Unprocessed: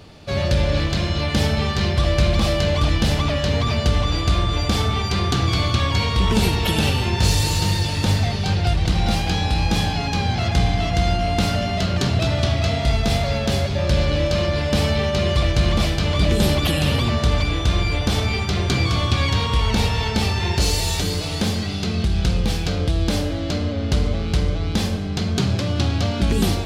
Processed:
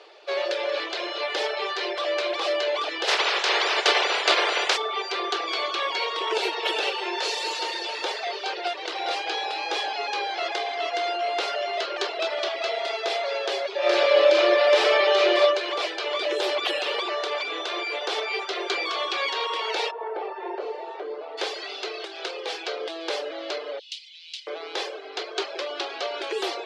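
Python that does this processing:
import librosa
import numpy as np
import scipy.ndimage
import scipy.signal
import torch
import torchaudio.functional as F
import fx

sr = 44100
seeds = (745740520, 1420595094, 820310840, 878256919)

y = fx.spec_clip(x, sr, under_db=28, at=(3.07, 4.76), fade=0.02)
y = fx.reverb_throw(y, sr, start_s=13.78, length_s=1.62, rt60_s=0.9, drr_db=-6.0)
y = fx.lowpass(y, sr, hz=1000.0, slope=12, at=(19.9, 21.37), fade=0.02)
y = fx.steep_highpass(y, sr, hz=2700.0, slope=36, at=(23.79, 24.47))
y = scipy.signal.sosfilt(scipy.signal.butter(12, 360.0, 'highpass', fs=sr, output='sos'), y)
y = fx.dereverb_blind(y, sr, rt60_s=0.59)
y = scipy.signal.sosfilt(scipy.signal.butter(2, 4200.0, 'lowpass', fs=sr, output='sos'), y)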